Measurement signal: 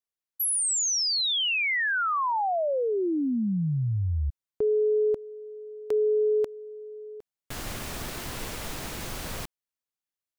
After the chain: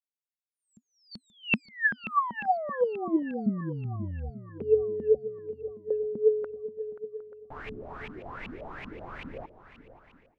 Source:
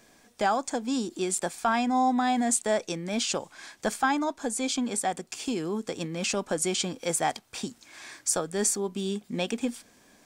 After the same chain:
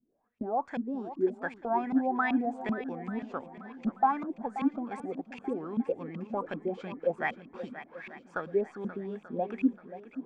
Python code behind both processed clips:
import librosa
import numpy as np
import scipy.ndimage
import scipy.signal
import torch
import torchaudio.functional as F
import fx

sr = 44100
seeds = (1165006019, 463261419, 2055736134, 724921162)

y = fx.filter_lfo_lowpass(x, sr, shape='saw_up', hz=2.6, low_hz=200.0, high_hz=2700.0, q=6.9)
y = fx.echo_swing(y, sr, ms=885, ratio=1.5, feedback_pct=32, wet_db=-13.0)
y = fx.gate_hold(y, sr, open_db=-36.0, close_db=-45.0, hold_ms=177.0, range_db=-13, attack_ms=1.7, release_ms=182.0)
y = y * librosa.db_to_amplitude(-9.0)